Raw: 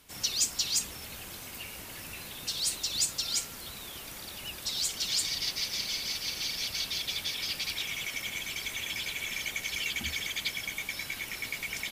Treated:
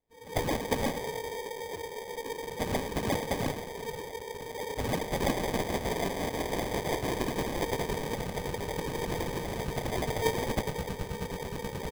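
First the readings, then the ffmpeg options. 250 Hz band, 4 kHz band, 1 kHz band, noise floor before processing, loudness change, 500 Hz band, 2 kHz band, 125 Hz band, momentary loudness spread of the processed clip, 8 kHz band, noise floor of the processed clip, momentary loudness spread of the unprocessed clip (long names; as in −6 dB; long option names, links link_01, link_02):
+15.5 dB, −10.0 dB, +14.5 dB, −44 dBFS, −1.5 dB, +20.0 dB, −3.0 dB, +13.5 dB, 8 LU, −10.0 dB, −42 dBFS, 12 LU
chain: -filter_complex "[0:a]lowshelf=frequency=160:width_type=q:width=3:gain=12,afreqshift=370,lowpass=frequency=4700:width=0.5412,lowpass=frequency=4700:width=1.3066,acrossover=split=710|2300[link_01][link_02][link_03];[link_03]adelay=120[link_04];[link_01]adelay=180[link_05];[link_05][link_02][link_04]amix=inputs=3:normalize=0,afftdn=noise_reduction=18:noise_floor=-45,crystalizer=i=2.5:c=0,asplit=2[link_06][link_07];[link_07]asplit=7[link_08][link_09][link_10][link_11][link_12][link_13][link_14];[link_08]adelay=105,afreqshift=36,volume=-11dB[link_15];[link_09]adelay=210,afreqshift=72,volume=-15.2dB[link_16];[link_10]adelay=315,afreqshift=108,volume=-19.3dB[link_17];[link_11]adelay=420,afreqshift=144,volume=-23.5dB[link_18];[link_12]adelay=525,afreqshift=180,volume=-27.6dB[link_19];[link_13]adelay=630,afreqshift=216,volume=-31.8dB[link_20];[link_14]adelay=735,afreqshift=252,volume=-35.9dB[link_21];[link_15][link_16][link_17][link_18][link_19][link_20][link_21]amix=inputs=7:normalize=0[link_22];[link_06][link_22]amix=inputs=2:normalize=0,acrusher=samples=32:mix=1:aa=0.000001"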